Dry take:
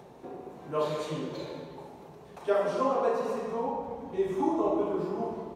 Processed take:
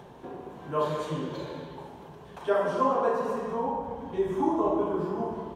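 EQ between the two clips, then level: bass shelf 160 Hz +7.5 dB; dynamic bell 3.2 kHz, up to -6 dB, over -50 dBFS, Q 0.93; graphic EQ with 31 bands 1 kHz +6 dB, 1.6 kHz +7 dB, 3.15 kHz +8 dB; 0.0 dB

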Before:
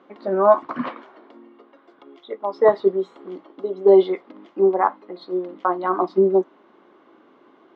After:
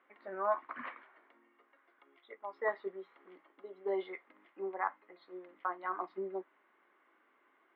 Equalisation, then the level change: band-pass filter 2 kHz, Q 2.6; distance through air 120 m; tilt EQ -1.5 dB/octave; -2.5 dB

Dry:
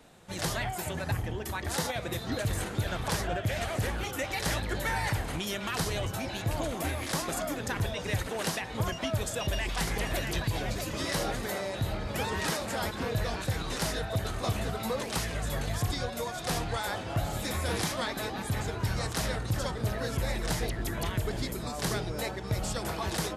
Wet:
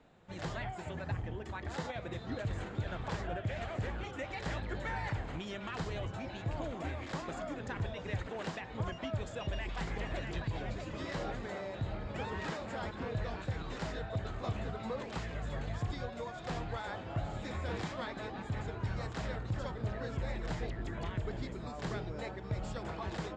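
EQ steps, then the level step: resonant low-pass 7.3 kHz, resonance Q 7.3; distance through air 350 m; -5.5 dB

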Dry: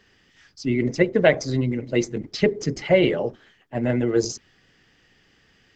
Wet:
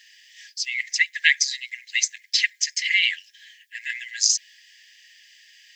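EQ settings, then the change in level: brick-wall FIR high-pass 1.6 kHz; tilt EQ +3.5 dB/octave; +4.5 dB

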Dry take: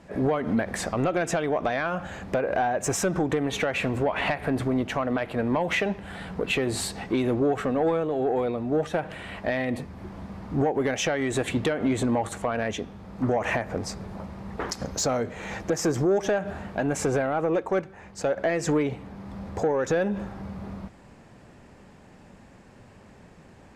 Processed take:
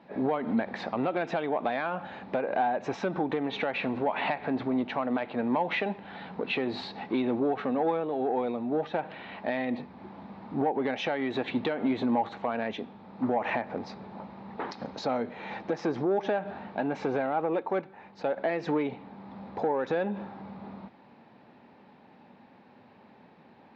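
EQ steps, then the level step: distance through air 180 m; cabinet simulation 190–5200 Hz, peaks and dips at 240 Hz +5 dB, 860 Hz +8 dB, 2.4 kHz +3 dB, 3.9 kHz +8 dB; -4.5 dB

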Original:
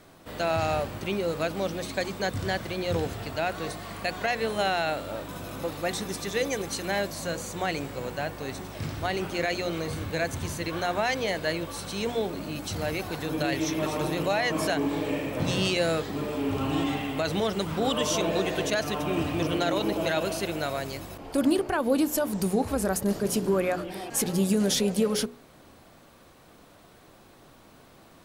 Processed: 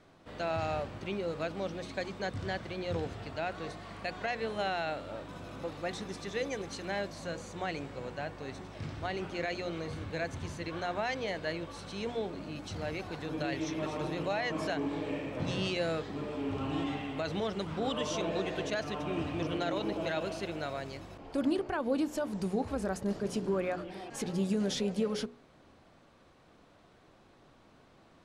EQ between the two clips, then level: distance through air 82 m; -6.5 dB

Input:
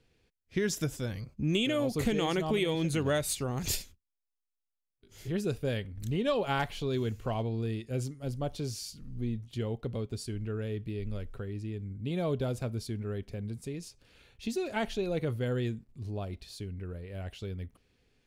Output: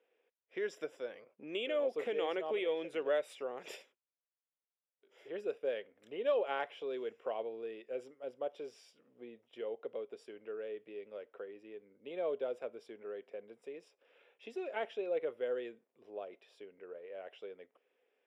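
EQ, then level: dynamic bell 860 Hz, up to -4 dB, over -44 dBFS, Q 1; Savitzky-Golay filter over 25 samples; ladder high-pass 430 Hz, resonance 50%; +4.0 dB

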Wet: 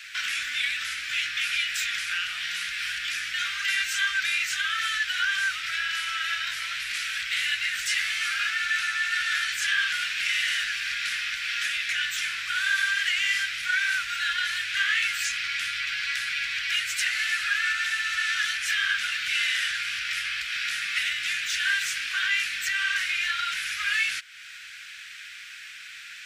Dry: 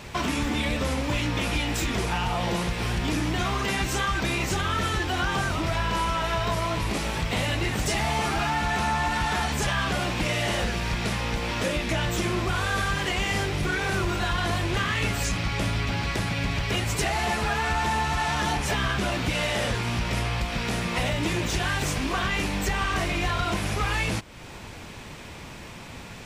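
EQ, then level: elliptic high-pass 1.5 kHz, stop band 40 dB; treble shelf 4.2 kHz -8 dB; +7.0 dB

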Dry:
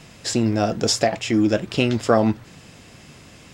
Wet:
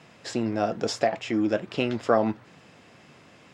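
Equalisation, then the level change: high-pass 110 Hz; low-pass 1.4 kHz 6 dB/octave; bass shelf 400 Hz -9.5 dB; 0.0 dB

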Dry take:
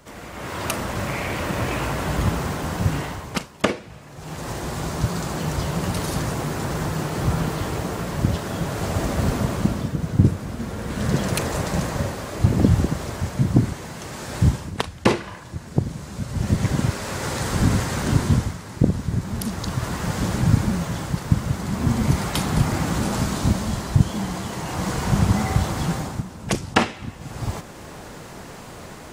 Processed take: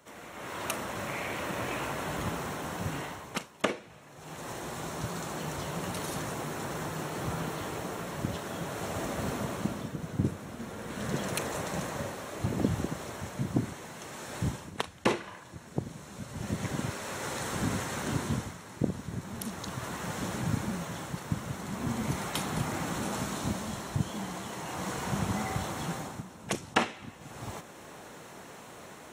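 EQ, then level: high-pass 260 Hz 6 dB/octave; band-stop 4.8 kHz, Q 6.6; -7.0 dB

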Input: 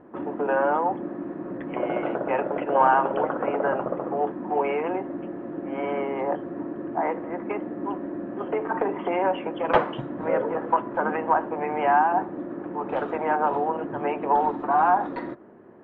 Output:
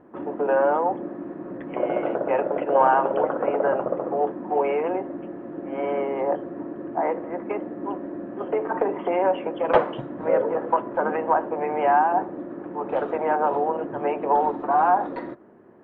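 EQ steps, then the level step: dynamic bell 530 Hz, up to +6 dB, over -36 dBFS, Q 1.3; -2.0 dB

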